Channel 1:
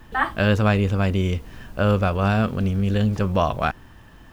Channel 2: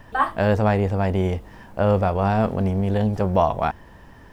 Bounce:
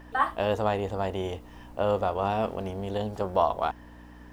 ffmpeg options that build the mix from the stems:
-filter_complex "[0:a]aeval=exprs='val(0)+0.02*(sin(2*PI*60*n/s)+sin(2*PI*2*60*n/s)/2+sin(2*PI*3*60*n/s)/3+sin(2*PI*4*60*n/s)/4+sin(2*PI*5*60*n/s)/5)':c=same,volume=-13.5dB[a];[1:a]aeval=exprs='val(0)+0.02*(sin(2*PI*60*n/s)+sin(2*PI*2*60*n/s)/2+sin(2*PI*3*60*n/s)/3+sin(2*PI*4*60*n/s)/4+sin(2*PI*5*60*n/s)/5)':c=same,highpass=280,volume=-4.5dB[b];[a][b]amix=inputs=2:normalize=0"

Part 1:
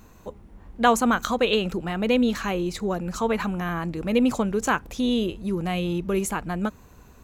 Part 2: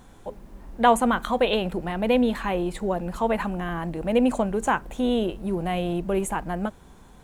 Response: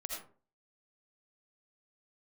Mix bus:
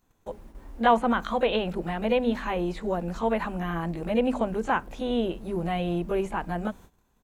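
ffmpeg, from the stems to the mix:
-filter_complex "[0:a]highshelf=f=4.6k:g=7,volume=-5dB[a];[1:a]adelay=18,volume=-2.5dB,asplit=2[b][c];[c]apad=whole_len=319024[d];[a][d]sidechaincompress=threshold=-32dB:ratio=8:attack=16:release=468[e];[e][b]amix=inputs=2:normalize=0,acrossover=split=4400[f][g];[g]acompressor=threshold=-58dB:ratio=4:attack=1:release=60[h];[f][h]amix=inputs=2:normalize=0,bandreject=f=50:t=h:w=6,bandreject=f=100:t=h:w=6,bandreject=f=150:t=h:w=6,bandreject=f=200:t=h:w=6,bandreject=f=250:t=h:w=6,agate=range=-18dB:threshold=-46dB:ratio=16:detection=peak"

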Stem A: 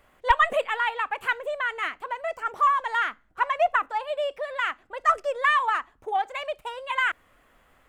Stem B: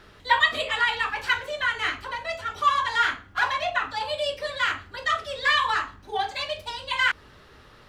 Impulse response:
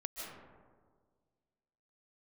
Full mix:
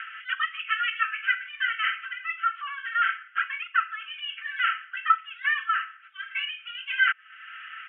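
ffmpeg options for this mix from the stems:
-filter_complex "[0:a]equalizer=f=2k:t=o:w=0.57:g=-9.5,volume=2dB,asplit=2[a][b];[1:a]volume=-1,volume=-1dB[c];[b]apad=whole_len=347869[d];[c][d]sidechaincompress=threshold=-26dB:ratio=8:attack=16:release=296[e];[a][e]amix=inputs=2:normalize=0,aecho=1:1:4.5:0.97,acompressor=mode=upward:threshold=-21dB:ratio=2.5,asuperpass=centerf=2000:order=20:qfactor=1.1"

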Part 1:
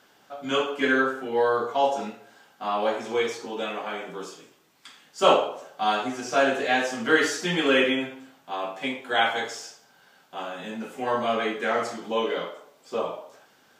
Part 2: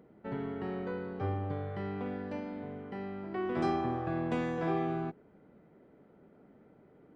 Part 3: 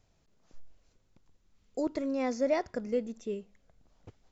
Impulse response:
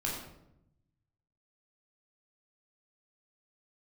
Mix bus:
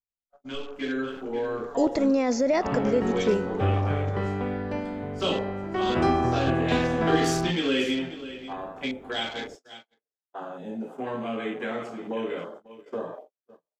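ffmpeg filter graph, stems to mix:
-filter_complex "[0:a]afwtdn=0.0158,acrossover=split=380|3000[a][b][c];[b]acompressor=threshold=-36dB:ratio=6[d];[a][d][c]amix=inputs=3:normalize=0,volume=-8dB,asplit=2[e][f];[f]volume=-14dB[g];[1:a]asubboost=boost=5:cutoff=87,adelay=2400,volume=0dB[h];[2:a]alimiter=level_in=2.5dB:limit=-24dB:level=0:latency=1,volume=-2.5dB,volume=2.5dB[i];[g]aecho=0:1:539:1[j];[e][h][i][j]amix=inputs=4:normalize=0,dynaudnorm=f=600:g=3:m=9dB,agate=range=-40dB:threshold=-43dB:ratio=16:detection=peak"

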